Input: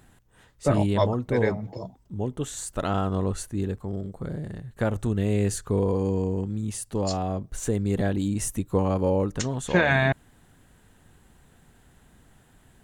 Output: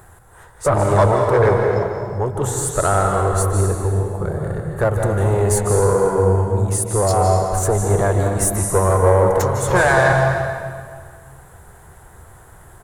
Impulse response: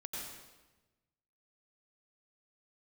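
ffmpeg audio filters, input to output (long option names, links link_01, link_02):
-filter_complex "[0:a]asoftclip=type=tanh:threshold=-22.5dB,equalizer=frequency=81:width_type=o:width=0.44:gain=9,asettb=1/sr,asplit=3[link_01][link_02][link_03];[link_01]atrim=end=9.284[link_04];[link_02]atrim=start=9.28:end=9.72,asetpts=PTS-STARTPTS,afade=type=in:duration=0.004:curve=qsin,afade=type=out:start_time=0.436:duration=0.004:curve=qsin,asoftclip=type=hard:threshold=-29.5dB[link_05];[link_03]atrim=start=9.716[link_06];[link_04][link_05]acrossfade=duration=0.004:curve1=hsin:curve2=qsin[link_07];[link_07][link_06]acrossfade=duration=0.004:curve1=qsin:curve2=hsin,firequalizer=gain_entry='entry(130,0);entry(250,-12);entry(370,4);entry(1100,9);entry(2800,-7);entry(9800,7)':delay=0.05:min_phase=1,asplit=2[link_08][link_09];[1:a]atrim=start_sample=2205,asetrate=26019,aresample=44100[link_10];[link_09][link_10]afir=irnorm=-1:irlink=0,volume=0.5dB[link_11];[link_08][link_11]amix=inputs=2:normalize=0,volume=3dB"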